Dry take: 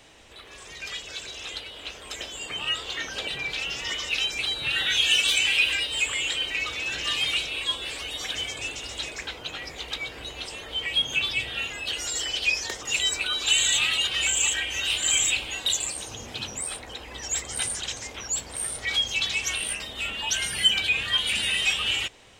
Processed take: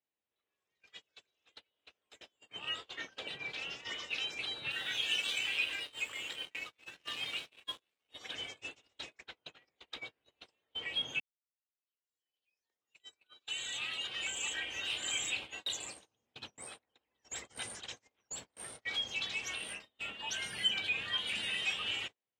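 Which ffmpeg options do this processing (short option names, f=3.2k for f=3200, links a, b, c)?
-filter_complex "[0:a]asettb=1/sr,asplit=3[a][b][c];[a]atrim=end=1.774[d];[b]atrim=start=1.77:end=2.31,asetpts=PTS-STARTPTS,afade=t=in:d=0.004:c=qsin,afade=t=out:st=0.536:d=0.004:c=qsin,highshelf=f=10k:g=6.5[e];[c]atrim=start=2.306[f];[d][e]acrossfade=d=0.004:c1=hsin:c2=qsin[g];[g][f]acrossfade=d=0.004:c1=qsin:c2=hsin,asettb=1/sr,asplit=3[h][i][j];[h]atrim=end=4.714[k];[i]atrim=start=4.71:end=8.09,asetpts=PTS-STARTPTS,afade=t=in:d=0.004:c=qsin,afade=t=out:st=3.376:d=0.004:c=qsin,aeval=exprs='sgn(val(0))*max(abs(val(0))-0.0178,0)':c=same[l];[j]atrim=start=8.086[m];[k][l]acrossfade=d=0.004:c1=hsin:c2=qsin[n];[n][m]acrossfade=d=0.004:c1=qsin:c2=hsin,asplit=2[o][p];[o]atrim=end=11.2,asetpts=PTS-STARTPTS,afade=t=out:st=11.196:d=0.004:c=hsin[q];[p]atrim=start=11.2,asetpts=PTS-STARTPTS,afade=t=in:d=3.4:c=qua[r];[q][r]concat=n=2:v=0:a=1,highpass=120,agate=range=-34dB:threshold=-32dB:ratio=16:detection=peak,highshelf=f=5.5k:g=-11.5,volume=-8.5dB"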